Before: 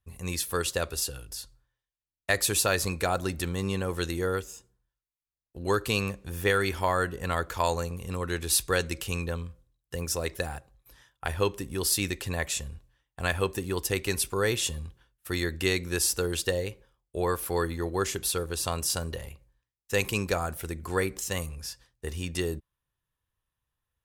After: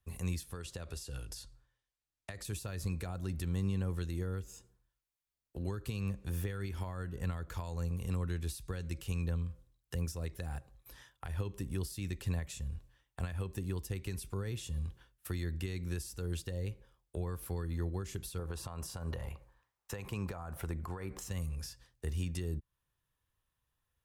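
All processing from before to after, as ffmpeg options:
-filter_complex "[0:a]asettb=1/sr,asplit=3[s0][s1][s2];[s0]atrim=end=0.434[s3];[s1]atrim=start=0.43:end=2.45,asetpts=PTS-STARTPTS,afade=t=in:d=0.004:c=qsin,afade=t=out:st=2.016:d=0.004:c=qsin,lowpass=10000,acompressor=threshold=0.0178:ratio=4:attack=3.2:release=140:knee=1:detection=peak[s4];[s2]atrim=start=2.446[s5];[s3][s4]acrossfade=d=0.004:c1=hsin:c2=qsin[s6];[s6][s5]acrossfade=d=0.004:c1=qsin:c2=hsin,asettb=1/sr,asplit=3[s7][s8][s9];[s7]atrim=end=18.394[s10];[s8]atrim=start=18.39:end=21.3,asetpts=PTS-STARTPTS,afade=t=in:d=0.004:c=qsin,afade=t=out:st=2.906:d=0.004:c=qsin,equalizer=f=950:w=0.63:g=14.5,acompressor=threshold=0.0447:ratio=1.5:attack=3.2:release=140:knee=1:detection=peak[s11];[s9]atrim=start=21.296[s12];[s10][s11]acrossfade=d=0.004:c1=hsin:c2=qsin[s13];[s13][s12]acrossfade=d=0.004:c1=qsin:c2=hsin,alimiter=limit=0.0944:level=0:latency=1:release=151,acrossover=split=210[s14][s15];[s15]acompressor=threshold=0.00501:ratio=6[s16];[s14][s16]amix=inputs=2:normalize=0,volume=1.12"

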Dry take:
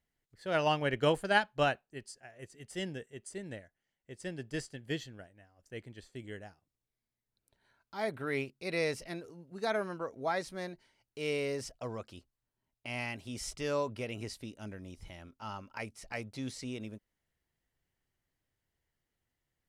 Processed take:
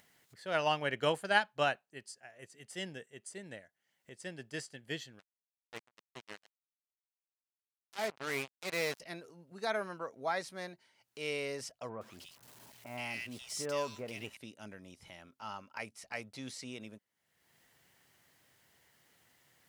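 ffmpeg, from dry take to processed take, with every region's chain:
-filter_complex "[0:a]asettb=1/sr,asplit=3[s0][s1][s2];[s0]atrim=end=5.194[s3];[s1]atrim=start=5.19:end=9,asetpts=PTS-STARTPTS,afade=t=in:d=0.004:c=qsin,afade=t=out:st=3.806:d=0.004:c=qsin,lowpass=f=7800:w=0.5412,lowpass=f=7800:w=1.3066,acrusher=bits=5:mix=0:aa=0.5[s4];[s2]atrim=start=8.996[s5];[s3][s4]acrossfade=d=0.004:c1=hsin:c2=qsin[s6];[s6][s5]acrossfade=d=0.004:c1=qsin:c2=hsin,asettb=1/sr,asplit=3[s7][s8][s9];[s7]atrim=end=11.894[s10];[s8]atrim=start=11.89:end=14.37,asetpts=PTS-STARTPTS,afade=t=in:d=0.004:c=qsin,afade=t=out:st=2.476:d=0.004:c=qsin,aeval=exprs='val(0)+0.5*0.00355*sgn(val(0))':c=same,acrossover=split=1700[s11][s12];[s12]adelay=120[s13];[s11][s13]amix=inputs=2:normalize=0,atrim=end_sample=109368[s14];[s9]atrim=start=14.366[s15];[s10][s14]acrossfade=d=0.004:c1=hsin:c2=qsin[s16];[s16][s15]acrossfade=d=0.004:c1=qsin:c2=hsin,highpass=180,equalizer=f=320:t=o:w=1.5:g=-6,acompressor=mode=upward:threshold=0.00282:ratio=2.5"

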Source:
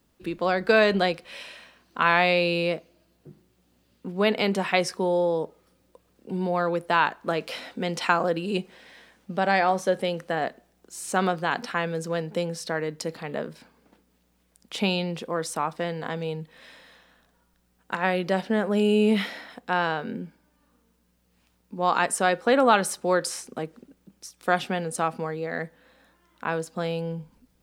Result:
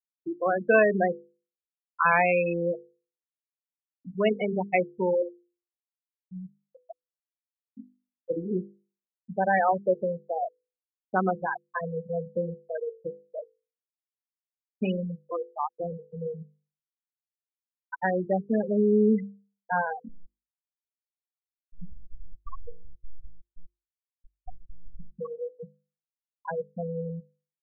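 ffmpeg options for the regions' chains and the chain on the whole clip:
-filter_complex "[0:a]asettb=1/sr,asplit=3[s0][s1][s2];[s0]atrim=end=5.224[s3];[s1]atrim=start=5.22:end=8.3,asetpts=PTS-STARTPTS,afade=t=in:d=0.004:c=qsin,afade=t=out:st=3.076:d=0.004:c=qsin,acompressor=threshold=0.0355:ratio=8:attack=3.2:release=140:knee=1:detection=peak,bandreject=f=480:w=7.4[s4];[s2]atrim=start=8.296[s5];[s3][s4]acrossfade=d=0.004:c1=hsin:c2=qsin[s6];[s6][s5]acrossfade=d=0.004:c1=qsin:c2=hsin,asettb=1/sr,asplit=3[s7][s8][s9];[s7]atrim=end=20.094[s10];[s8]atrim=start=20.09:end=25.18,asetpts=PTS-STARTPTS,afade=t=in:d=0.004:c=qsin,afade=t=out:st=5.086:d=0.004:c=qsin,acompressor=threshold=0.0501:ratio=5:attack=3.2:release=140:knee=1:detection=peak,aecho=1:1:1.6:0.67,atrim=end_sample=224469,aeval=exprs='abs(val(0))':c=same[s11];[s9]atrim=start=25.176[s12];[s10][s11]acrossfade=d=0.004:c1=hsin:c2=qsin[s13];[s13][s12]acrossfade=d=0.004:c1=qsin:c2=hsin,lowpass=5000,afftfilt=real='re*gte(hypot(re,im),0.224)':imag='im*gte(hypot(re,im),0.224)':win_size=1024:overlap=0.75,bandreject=f=50:t=h:w=6,bandreject=f=100:t=h:w=6,bandreject=f=150:t=h:w=6,bandreject=f=200:t=h:w=6,bandreject=f=250:t=h:w=6,bandreject=f=300:t=h:w=6,bandreject=f=350:t=h:w=6,bandreject=f=400:t=h:w=6,bandreject=f=450:t=h:w=6,bandreject=f=500:t=h:w=6"

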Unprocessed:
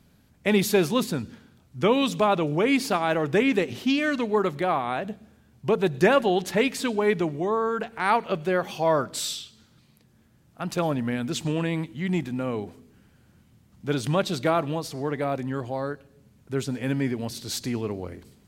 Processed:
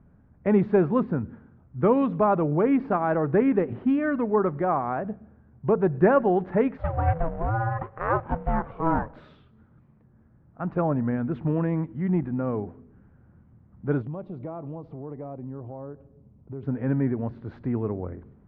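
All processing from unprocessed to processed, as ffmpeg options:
-filter_complex "[0:a]asettb=1/sr,asplit=3[s0][s1][s2];[s0]atrim=end=6.774[s3];[s1]atrim=start=6.77:end=9.16,asetpts=PTS-STARTPTS,afade=t=in:d=0.004:c=qsin,afade=t=out:st=2.386:d=0.004:c=qsin,acrusher=bits=2:mode=log:mix=0:aa=0.000001,aeval=exprs='val(0)*sin(2*PI*330*n/s)':c=same[s4];[s2]atrim=start=9.156[s5];[s3][s4]acrossfade=d=0.004:c1=hsin:c2=qsin[s6];[s6][s5]acrossfade=d=0.004:c1=qsin:c2=hsin,asettb=1/sr,asplit=3[s7][s8][s9];[s7]atrim=end=14.024[s10];[s8]atrim=start=14.02:end=16.63,asetpts=PTS-STARTPTS,afade=t=in:d=0.004:c=qsin,afade=t=out:st=2.606:d=0.004:c=qsin,equalizer=f=1600:t=o:w=0.83:g=-14.5,acompressor=threshold=0.0126:ratio=2.5:attack=3.2:release=140:knee=1:detection=peak[s11];[s9]atrim=start=16.626[s12];[s10][s11]acrossfade=d=0.004:c1=hsin:c2=qsin[s13];[s13][s12]acrossfade=d=0.004:c1=qsin:c2=hsin,lowpass=f=1500:w=0.5412,lowpass=f=1500:w=1.3066,lowshelf=f=130:g=6.5"

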